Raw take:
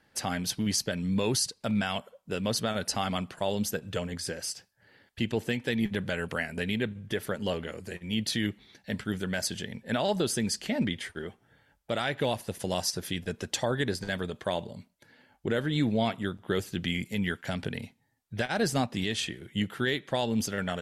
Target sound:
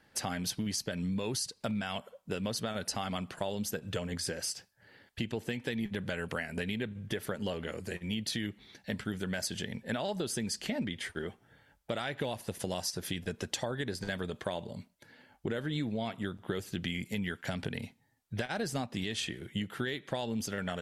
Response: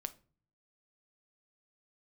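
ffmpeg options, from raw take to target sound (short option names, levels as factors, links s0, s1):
-af "acompressor=threshold=0.0251:ratio=6,volume=1.12"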